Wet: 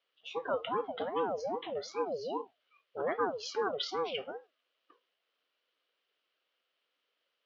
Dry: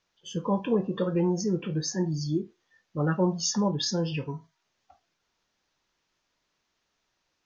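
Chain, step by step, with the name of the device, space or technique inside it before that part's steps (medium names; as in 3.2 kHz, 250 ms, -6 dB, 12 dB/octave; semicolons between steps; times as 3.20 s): voice changer toy (ring modulator with a swept carrier 460 Hz, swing 45%, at 2.5 Hz; cabinet simulation 410–4300 Hz, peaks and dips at 500 Hz +7 dB, 860 Hz -7 dB, 1.3 kHz +3 dB, 3 kHz +9 dB); trim -3 dB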